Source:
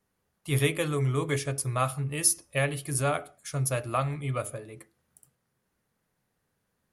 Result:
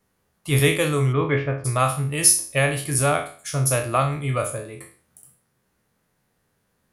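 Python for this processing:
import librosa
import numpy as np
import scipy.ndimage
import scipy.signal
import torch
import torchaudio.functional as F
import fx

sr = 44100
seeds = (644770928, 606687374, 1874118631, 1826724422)

y = fx.spec_trails(x, sr, decay_s=0.42)
y = fx.lowpass(y, sr, hz=fx.line((1.12, 3400.0), (1.64, 1900.0)), slope=24, at=(1.12, 1.64), fade=0.02)
y = y * librosa.db_to_amplitude(6.0)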